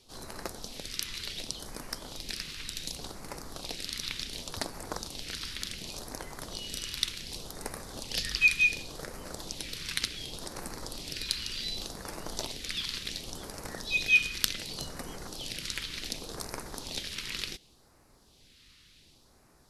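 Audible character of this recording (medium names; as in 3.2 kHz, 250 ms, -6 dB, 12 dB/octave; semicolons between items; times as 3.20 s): phasing stages 2, 0.68 Hz, lowest notch 680–3100 Hz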